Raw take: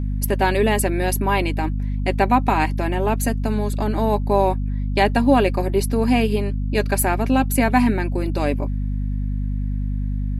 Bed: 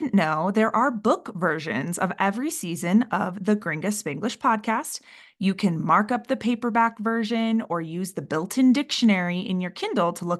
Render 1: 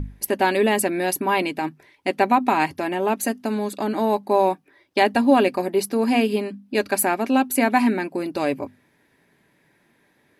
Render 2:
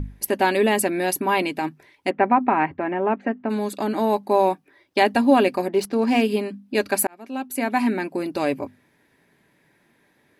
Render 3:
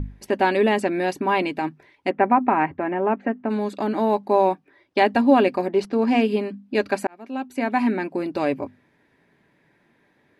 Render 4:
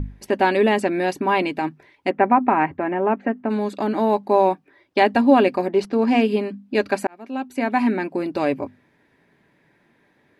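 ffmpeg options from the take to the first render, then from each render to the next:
-af "bandreject=f=50:t=h:w=6,bandreject=f=100:t=h:w=6,bandreject=f=150:t=h:w=6,bandreject=f=200:t=h:w=6,bandreject=f=250:t=h:w=6"
-filter_complex "[0:a]asplit=3[a][b][c];[a]afade=t=out:st=2.09:d=0.02[d];[b]lowpass=f=2.2k:w=0.5412,lowpass=f=2.2k:w=1.3066,afade=t=in:st=2.09:d=0.02,afade=t=out:st=3.49:d=0.02[e];[c]afade=t=in:st=3.49:d=0.02[f];[d][e][f]amix=inputs=3:normalize=0,asettb=1/sr,asplit=3[g][h][i];[g]atrim=end=5.684[j];[h]atrim=start=5.68:end=6.22,asetpts=PTS-STARTPTS,afade=t=in:d=0.004:c=qsin,afade=t=out:st=0.536:d=0.004:c=qsin,adynamicsmooth=sensitivity=7.5:basefreq=3.8k[k];[i]atrim=start=6.216[l];[j][k]acrossfade=d=0.004:c1=hsin:c2=qsin[m];[m][l]acrossfade=d=0.004:c1=qsin:c2=hsin,asplit=2[n][o];[n]atrim=end=7.07,asetpts=PTS-STARTPTS,afade=t=out:st=7.066:d=0.004:c=hsin[p];[o]atrim=start=7.07,asetpts=PTS-STARTPTS,afade=t=in:d=1.02[q];[p][q]concat=n=2:v=0:a=1"
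-filter_complex "[0:a]acrossover=split=8600[a][b];[b]acompressor=threshold=-46dB:ratio=4:attack=1:release=60[c];[a][c]amix=inputs=2:normalize=0,aemphasis=mode=reproduction:type=50fm"
-af "volume=1.5dB"

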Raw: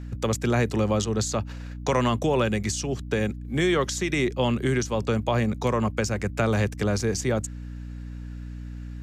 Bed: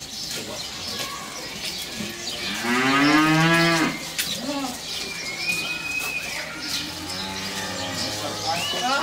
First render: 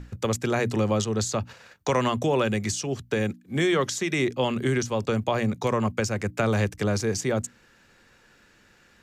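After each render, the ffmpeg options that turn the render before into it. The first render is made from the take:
-af "bandreject=f=60:t=h:w=6,bandreject=f=120:t=h:w=6,bandreject=f=180:t=h:w=6,bandreject=f=240:t=h:w=6,bandreject=f=300:t=h:w=6"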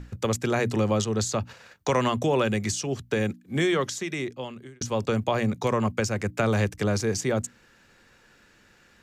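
-filter_complex "[0:a]asplit=2[a][b];[a]atrim=end=4.81,asetpts=PTS-STARTPTS,afade=t=out:st=3.57:d=1.24[c];[b]atrim=start=4.81,asetpts=PTS-STARTPTS,afade=t=in:d=0.004:c=hsin[d];[c][d]concat=n=2:v=0:a=1"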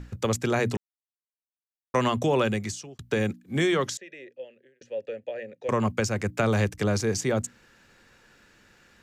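-filter_complex "[0:a]asettb=1/sr,asplit=3[a][b][c];[a]atrim=end=3.974[d];[b]atrim=start=3.97:end=5.69,asetpts=PTS-STARTPTS,afade=t=in:d=0.004:c=qsin,afade=t=out:st=1.716:d=0.004:c=qsin,asplit=3[e][f][g];[e]bandpass=f=530:t=q:w=8,volume=0dB[h];[f]bandpass=f=1.84k:t=q:w=8,volume=-6dB[i];[g]bandpass=f=2.48k:t=q:w=8,volume=-9dB[j];[h][i][j]amix=inputs=3:normalize=0[k];[c]atrim=start=5.686[l];[d][k]acrossfade=d=0.004:c1=hsin:c2=qsin[m];[m][l]acrossfade=d=0.004:c1=qsin:c2=hsin,asplit=4[n][o][p][q];[n]atrim=end=0.77,asetpts=PTS-STARTPTS,afade=t=out:st=0.766:d=0.004:c=hsin[r];[o]atrim=start=0.77:end=1.94,asetpts=PTS-STARTPTS,volume=0[s];[p]atrim=start=1.94:end=2.99,asetpts=PTS-STARTPTS,afade=t=in:d=0.004:c=hsin,afade=t=out:st=0.52:d=0.53[t];[q]atrim=start=2.99,asetpts=PTS-STARTPTS,afade=t=in:d=0.004:c=hsin[u];[r][s][t][u]concat=n=4:v=0:a=1"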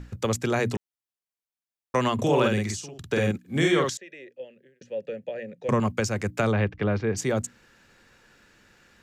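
-filter_complex "[0:a]asettb=1/sr,asplit=3[a][b][c];[a]atrim=end=2.144[d];[b]atrim=start=2.14:end=3.9,asetpts=PTS-STARTPTS,afade=t=in:d=0.004:c=qsin,afade=t=out:st=1.756:d=0.004:c=qsin,asplit=2[e][f];[f]adelay=48,volume=-2dB[g];[e][g]amix=inputs=2:normalize=0,atrim=end_sample=77616[h];[c]atrim=start=3.896[i];[d][h]acrossfade=d=0.004:c1=hsin:c2=qsin[j];[j][i]acrossfade=d=0.004:c1=qsin:c2=hsin,asettb=1/sr,asplit=3[k][l][m];[k]atrim=end=4.404[n];[l]atrim=start=4.4:end=5.8,asetpts=PTS-STARTPTS,afade=t=in:d=0.004:c=qsin,afade=t=out:st=1.396:d=0.004:c=qsin,equalizer=f=170:t=o:w=0.67:g=15[o];[m]atrim=start=5.796[p];[n][o]acrossfade=d=0.004:c1=hsin:c2=qsin[q];[q][p]acrossfade=d=0.004:c1=qsin:c2=hsin,asplit=3[r][s][t];[r]afade=t=out:st=6.51:d=0.02[u];[s]lowpass=f=3.1k:w=0.5412,lowpass=f=3.1k:w=1.3066,afade=t=in:st=6.51:d=0.02,afade=t=out:st=7.16:d=0.02[v];[t]afade=t=in:st=7.16:d=0.02[w];[u][v][w]amix=inputs=3:normalize=0"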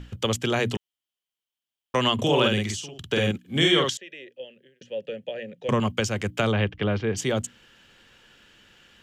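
-af "equalizer=f=3.1k:t=o:w=0.34:g=15"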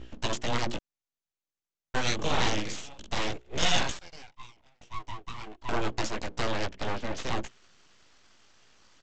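-af "flanger=delay=16:depth=3.8:speed=0.3,aresample=16000,aeval=exprs='abs(val(0))':c=same,aresample=44100"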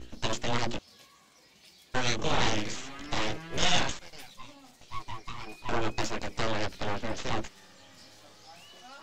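-filter_complex "[1:a]volume=-26.5dB[a];[0:a][a]amix=inputs=2:normalize=0"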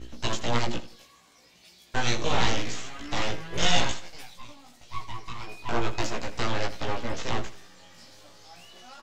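-filter_complex "[0:a]asplit=2[a][b];[b]adelay=17,volume=-3dB[c];[a][c]amix=inputs=2:normalize=0,aecho=1:1:82|164|246:0.178|0.0622|0.0218"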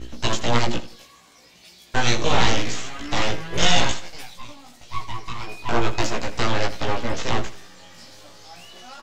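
-af "volume=6dB,alimiter=limit=-3dB:level=0:latency=1"

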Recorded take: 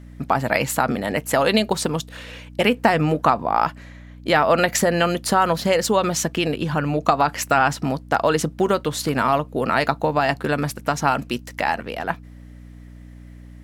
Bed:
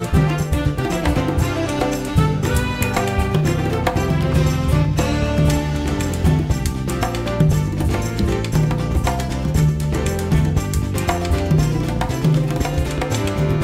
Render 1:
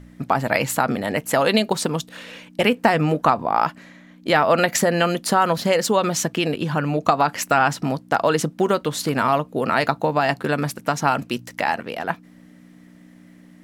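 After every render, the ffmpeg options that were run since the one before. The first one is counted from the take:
-af "bandreject=f=60:t=h:w=4,bandreject=f=120:t=h:w=4"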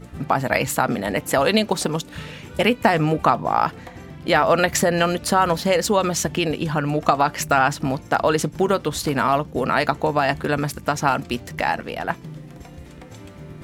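-filter_complex "[1:a]volume=-21dB[a];[0:a][a]amix=inputs=2:normalize=0"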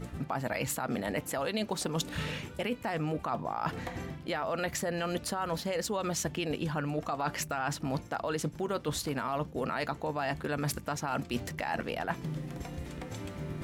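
-af "alimiter=limit=-11.5dB:level=0:latency=1:release=89,areverse,acompressor=threshold=-29dB:ratio=12,areverse"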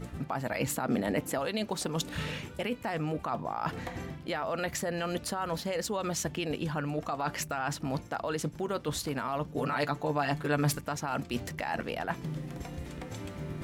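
-filter_complex "[0:a]asettb=1/sr,asplit=3[a][b][c];[a]atrim=end=0.594[d];[b]atrim=start=0.59:end=1.39,asetpts=PTS-STARTPTS,afade=t=in:d=0.004:c=qsin,afade=t=out:st=0.796:d=0.004:c=qsin,equalizer=f=280:w=0.69:g=5.5[e];[c]atrim=start=1.386[f];[d][e]acrossfade=d=0.004:c1=hsin:c2=qsin[g];[g][f]acrossfade=d=0.004:c1=qsin:c2=hsin,asettb=1/sr,asplit=3[h][i][j];[h]atrim=end=9.494[k];[i]atrim=start=9.49:end=10.81,asetpts=PTS-STARTPTS,afade=t=in:d=0.004:c=qsin,afade=t=out:st=1.316:d=0.004:c=qsin,aecho=1:1:6.9:0.91,atrim=end_sample=58212[l];[j]atrim=start=10.806[m];[k][l]acrossfade=d=0.004:c1=hsin:c2=qsin[n];[n][m]acrossfade=d=0.004:c1=qsin:c2=hsin"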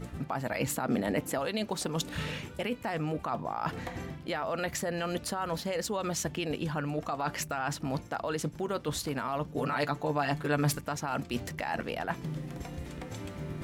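-af anull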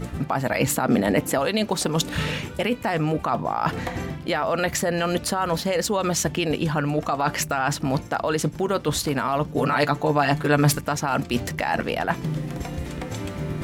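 -af "volume=9.5dB"

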